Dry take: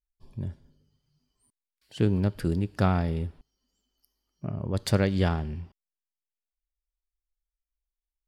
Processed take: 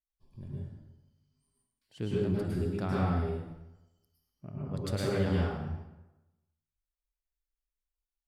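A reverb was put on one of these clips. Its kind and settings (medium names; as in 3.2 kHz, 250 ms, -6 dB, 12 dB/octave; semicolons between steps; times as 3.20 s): plate-style reverb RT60 1 s, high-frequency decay 0.7×, pre-delay 95 ms, DRR -6 dB; trim -12 dB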